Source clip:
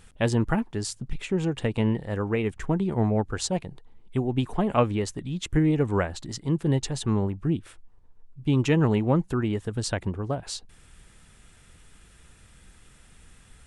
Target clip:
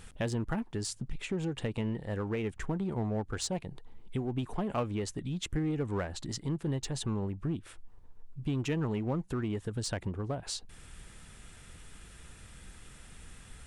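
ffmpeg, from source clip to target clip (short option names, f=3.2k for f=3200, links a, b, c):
-filter_complex "[0:a]asplit=2[a][b];[b]asoftclip=type=hard:threshold=-26.5dB,volume=-5dB[c];[a][c]amix=inputs=2:normalize=0,acompressor=threshold=-36dB:ratio=2,volume=-1.5dB"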